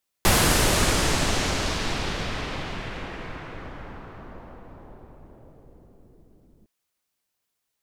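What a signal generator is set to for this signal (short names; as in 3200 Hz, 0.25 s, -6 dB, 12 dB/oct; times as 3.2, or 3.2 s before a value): swept filtered noise pink, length 6.41 s lowpass, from 13000 Hz, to 300 Hz, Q 1, exponential, gain ramp -36 dB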